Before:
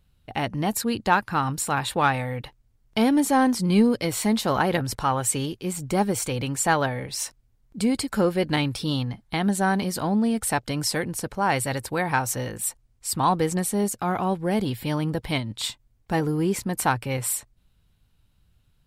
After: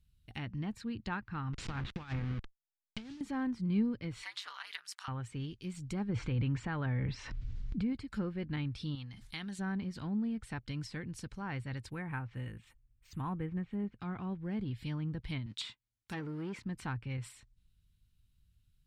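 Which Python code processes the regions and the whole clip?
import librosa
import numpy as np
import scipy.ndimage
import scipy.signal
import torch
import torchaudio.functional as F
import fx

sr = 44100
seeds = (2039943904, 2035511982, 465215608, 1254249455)

y = fx.chain(x, sr, fx.delta_hold(step_db=-25.0),
    fx.lowpass(hz=5900.0, slope=12),
    fx.over_compress(threshold_db=-25.0, ratio=-0.5), at=(1.53, 3.21))
y = fx.chain(y, sr, fx.highpass(hz=1000.0, slope=24),
    fx.ring_mod(carrier_hz=99.0),
    fx.band_squash(depth_pct=100), at=(4.23, 5.08))
y = fx.chain(y, sr, fx.air_absorb(metres=120.0),
    fx.env_flatten(amount_pct=70), at=(6.09, 7.93))
y = fx.chain(y, sr, fx.low_shelf(hz=480.0, db=-10.5),
    fx.sustainer(db_per_s=61.0), at=(8.95, 9.59))
y = fx.chain(y, sr, fx.lowpass(hz=3000.0, slope=24),
    fx.resample_bad(factor=4, down='none', up='hold'), at=(11.9, 14.0))
y = fx.chain(y, sr, fx.leveller(passes=2),
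    fx.highpass(hz=510.0, slope=6), at=(15.46, 16.64))
y = fx.env_lowpass_down(y, sr, base_hz=1800.0, full_db=-21.0)
y = fx.tone_stack(y, sr, knobs='6-0-2')
y = y * 10.0 ** (6.5 / 20.0)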